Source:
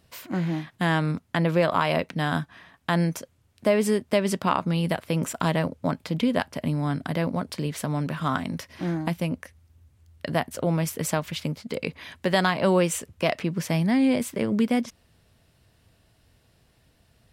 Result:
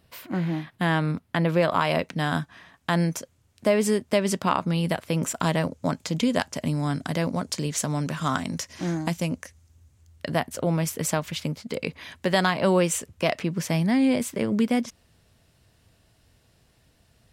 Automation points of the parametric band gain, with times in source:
parametric band 6,800 Hz 0.8 octaves
0:01.27 −5 dB
0:01.89 +5 dB
0:05.29 +5 dB
0:06.03 +15 dB
0:09.28 +15 dB
0:10.44 +3.5 dB

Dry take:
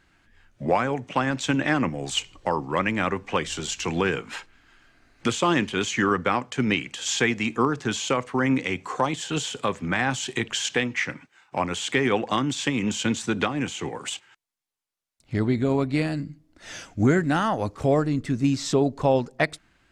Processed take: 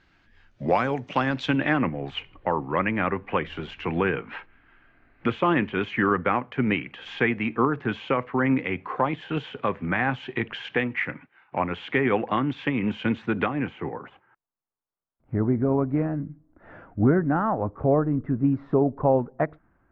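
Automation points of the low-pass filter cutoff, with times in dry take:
low-pass filter 24 dB per octave
0:01.12 5,400 Hz
0:01.96 2,500 Hz
0:13.56 2,500 Hz
0:14.10 1,400 Hz

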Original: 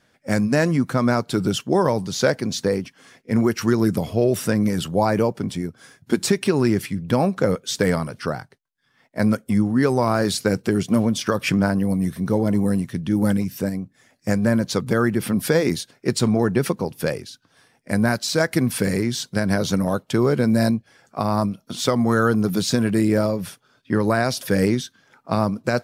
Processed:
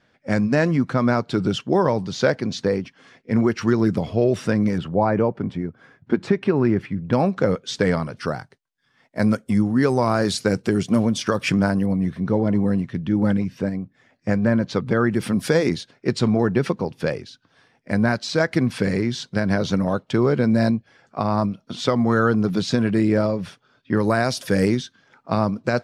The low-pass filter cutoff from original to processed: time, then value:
4,400 Hz
from 0:04.78 2,000 Hz
from 0:07.13 4,800 Hz
from 0:08.17 8,300 Hz
from 0:11.86 3,300 Hz
from 0:15.11 7,700 Hz
from 0:15.69 4,500 Hz
from 0:23.97 9,100 Hz
from 0:24.77 5,500 Hz

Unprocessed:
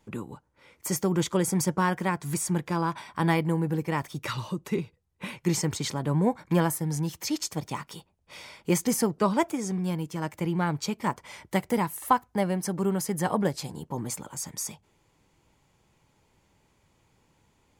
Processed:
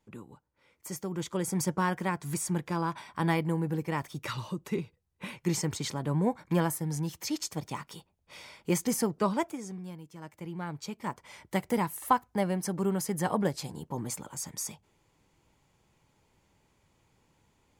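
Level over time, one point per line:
0:01.11 −10 dB
0:01.64 −3.5 dB
0:09.28 −3.5 dB
0:10.01 −15 dB
0:11.72 −2.5 dB

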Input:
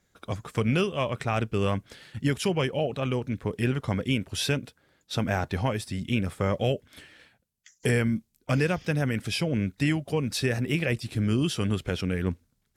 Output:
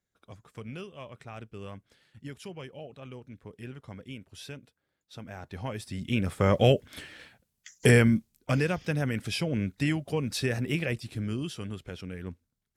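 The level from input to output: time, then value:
0:05.34 −16 dB
0:05.73 −7 dB
0:06.63 +5 dB
0:07.96 +5 dB
0:08.64 −2.5 dB
0:10.74 −2.5 dB
0:11.72 −11 dB

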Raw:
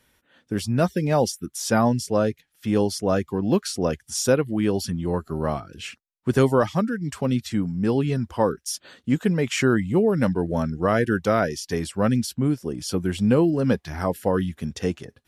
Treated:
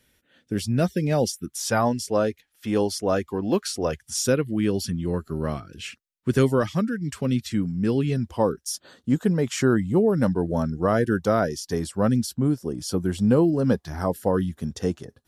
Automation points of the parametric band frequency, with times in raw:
parametric band −9 dB 0.92 octaves
0:01.37 1,000 Hz
0:01.92 140 Hz
0:03.75 140 Hz
0:04.25 810 Hz
0:08.02 810 Hz
0:08.64 2,400 Hz

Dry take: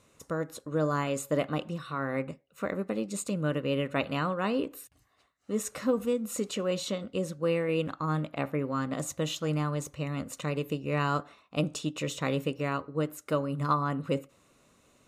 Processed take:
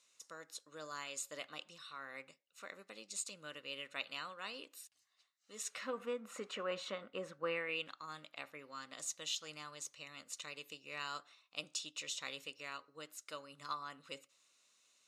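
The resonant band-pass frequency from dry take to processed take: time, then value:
resonant band-pass, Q 1.2
0:05.55 5,100 Hz
0:06.07 1,500 Hz
0:07.46 1,500 Hz
0:08.00 5,000 Hz

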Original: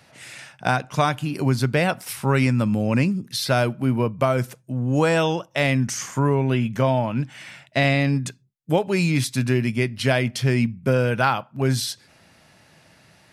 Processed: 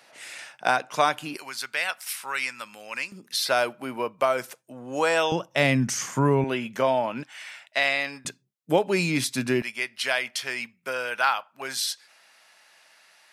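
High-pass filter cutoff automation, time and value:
410 Hz
from 0:01.37 1,400 Hz
from 0:03.12 540 Hz
from 0:05.32 140 Hz
from 0:06.44 380 Hz
from 0:07.23 820 Hz
from 0:08.25 250 Hz
from 0:09.62 930 Hz

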